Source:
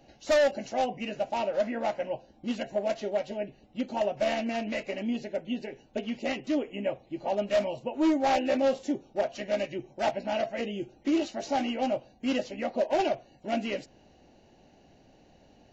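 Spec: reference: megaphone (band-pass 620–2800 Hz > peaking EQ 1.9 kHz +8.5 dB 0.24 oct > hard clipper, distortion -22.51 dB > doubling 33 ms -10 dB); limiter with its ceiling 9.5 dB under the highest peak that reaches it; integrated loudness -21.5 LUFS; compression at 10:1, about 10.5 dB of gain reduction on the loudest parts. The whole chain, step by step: compression 10:1, threshold -32 dBFS; peak limiter -32.5 dBFS; band-pass 620–2800 Hz; peaking EQ 1.9 kHz +8.5 dB 0.24 oct; hard clipper -35 dBFS; doubling 33 ms -10 dB; trim +24 dB

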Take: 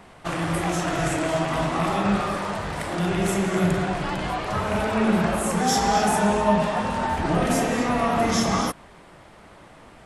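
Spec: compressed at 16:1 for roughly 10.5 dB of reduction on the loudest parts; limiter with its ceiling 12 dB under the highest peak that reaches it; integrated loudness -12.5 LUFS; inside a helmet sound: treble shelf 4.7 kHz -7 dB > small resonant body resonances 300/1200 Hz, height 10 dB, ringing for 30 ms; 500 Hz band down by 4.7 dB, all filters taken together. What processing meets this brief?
peaking EQ 500 Hz -6.5 dB; compression 16:1, threshold -28 dBFS; peak limiter -31 dBFS; treble shelf 4.7 kHz -7 dB; small resonant body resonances 300/1200 Hz, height 10 dB, ringing for 30 ms; trim +24 dB

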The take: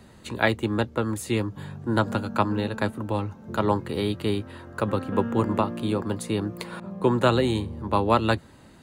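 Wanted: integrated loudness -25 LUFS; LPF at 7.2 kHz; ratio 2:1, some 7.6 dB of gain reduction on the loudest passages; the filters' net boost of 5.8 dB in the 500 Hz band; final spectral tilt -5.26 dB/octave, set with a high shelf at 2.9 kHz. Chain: low-pass 7.2 kHz; peaking EQ 500 Hz +7 dB; treble shelf 2.9 kHz +4.5 dB; compression 2:1, threshold -26 dBFS; trim +3.5 dB

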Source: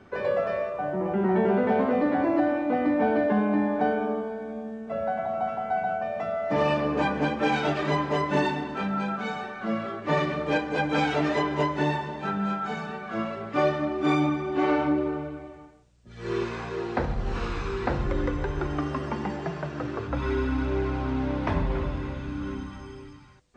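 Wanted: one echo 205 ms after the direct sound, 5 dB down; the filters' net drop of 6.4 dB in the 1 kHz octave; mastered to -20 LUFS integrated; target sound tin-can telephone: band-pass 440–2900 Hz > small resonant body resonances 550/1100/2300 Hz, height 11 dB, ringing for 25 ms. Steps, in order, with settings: band-pass 440–2900 Hz; peaking EQ 1 kHz -8.5 dB; delay 205 ms -5 dB; small resonant body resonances 550/1100/2300 Hz, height 11 dB, ringing for 25 ms; trim +7 dB

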